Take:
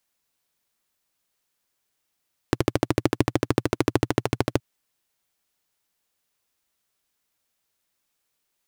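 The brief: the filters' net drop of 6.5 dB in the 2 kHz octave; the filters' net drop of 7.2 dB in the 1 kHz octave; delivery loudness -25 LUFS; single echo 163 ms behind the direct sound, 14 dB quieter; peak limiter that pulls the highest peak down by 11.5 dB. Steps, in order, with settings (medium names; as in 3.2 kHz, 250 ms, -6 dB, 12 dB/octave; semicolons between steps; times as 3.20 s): peaking EQ 1 kHz -8.5 dB; peaking EQ 2 kHz -5.5 dB; peak limiter -16.5 dBFS; delay 163 ms -14 dB; trim +11 dB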